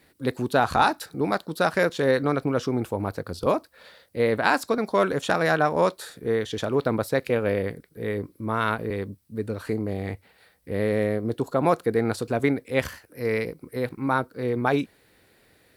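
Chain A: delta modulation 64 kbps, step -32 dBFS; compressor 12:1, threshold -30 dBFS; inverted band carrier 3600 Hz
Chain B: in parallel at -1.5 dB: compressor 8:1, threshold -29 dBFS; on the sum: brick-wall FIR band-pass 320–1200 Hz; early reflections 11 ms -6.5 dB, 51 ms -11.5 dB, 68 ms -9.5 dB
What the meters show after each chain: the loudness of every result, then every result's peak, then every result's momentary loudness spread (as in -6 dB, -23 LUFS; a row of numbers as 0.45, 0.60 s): -32.5, -24.0 LUFS; -17.0, -3.0 dBFS; 4, 11 LU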